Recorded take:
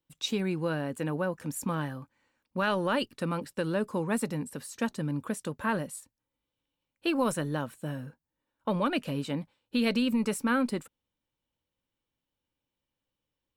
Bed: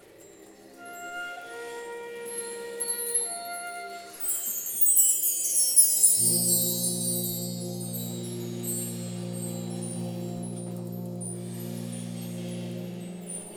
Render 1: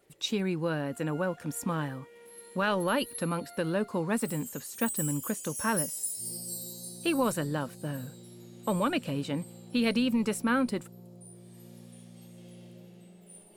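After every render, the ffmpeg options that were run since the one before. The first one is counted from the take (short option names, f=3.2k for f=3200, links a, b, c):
-filter_complex "[1:a]volume=-14.5dB[a];[0:a][a]amix=inputs=2:normalize=0"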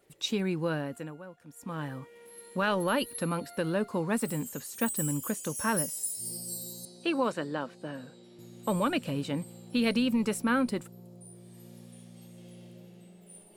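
-filter_complex "[0:a]asettb=1/sr,asplit=3[a][b][c];[a]atrim=end=6.854[d];[b]atrim=start=6.85:end=8.39,asetpts=PTS-STARTPTS,afade=t=in:d=0.004:c=qsin,afade=t=out:st=1.536:d=0.004:c=qsin,highpass=250,lowpass=4.4k[e];[c]atrim=start=8.386[f];[d][e]acrossfade=d=0.004:c1=hsin:c2=qsin[g];[g][f]acrossfade=d=0.004:c1=qsin:c2=hsin,asplit=3[h][i][j];[h]atrim=end=1.17,asetpts=PTS-STARTPTS,afade=t=out:st=0.75:d=0.42:silence=0.16788[k];[i]atrim=start=1.17:end=1.56,asetpts=PTS-STARTPTS,volume=-15.5dB[l];[j]atrim=start=1.56,asetpts=PTS-STARTPTS,afade=t=in:d=0.42:silence=0.16788[m];[k][l][m]concat=n=3:v=0:a=1"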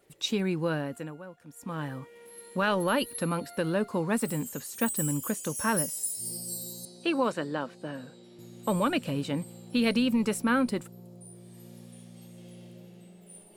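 -af "volume=1.5dB"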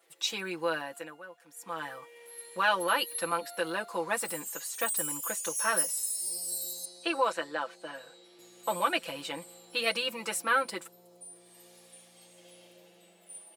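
-af "highpass=640,aecho=1:1:6:0.92"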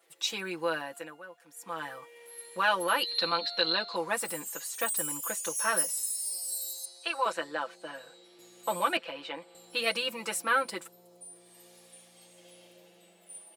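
-filter_complex "[0:a]asettb=1/sr,asplit=3[a][b][c];[a]atrim=end=3.034[d];[b]atrim=start=3.03:end=3.96,asetpts=PTS-STARTPTS,afade=t=in:d=0.004:c=qsin,afade=t=out:st=0.926:d=0.004:c=qsin,lowpass=f=4.1k:t=q:w=15[e];[c]atrim=start=3.956[f];[d][e]acrossfade=d=0.004:c1=hsin:c2=qsin[g];[g][f]acrossfade=d=0.004:c1=qsin:c2=hsin,asettb=1/sr,asplit=3[h][i][j];[h]atrim=end=6.034[k];[i]atrim=start=6.03:end=7.26,asetpts=PTS-STARTPTS,afade=t=in:d=0.004:c=qsin,afade=t=out:st=1.226:d=0.004:c=qsin,highpass=680[l];[j]atrim=start=7.256[m];[k][l]acrossfade=d=0.004:c1=hsin:c2=qsin[n];[n][m]acrossfade=d=0.004:c1=qsin:c2=hsin,asettb=1/sr,asplit=3[o][p][q];[o]atrim=end=8.974[r];[p]atrim=start=8.97:end=9.55,asetpts=PTS-STARTPTS,afade=t=in:d=0.004:c=qsin,afade=t=out:st=0.576:d=0.004:c=qsin,acrossover=split=270 4300:gain=0.224 1 0.0794[s][t][u];[s][t][u]amix=inputs=3:normalize=0[v];[q]atrim=start=9.546[w];[r][v]acrossfade=d=0.004:c1=hsin:c2=qsin[x];[x][w]acrossfade=d=0.004:c1=qsin:c2=hsin"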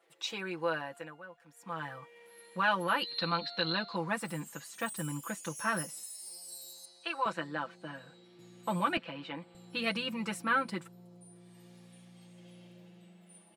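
-af "lowpass=f=2.2k:p=1,asubboost=boost=12:cutoff=140"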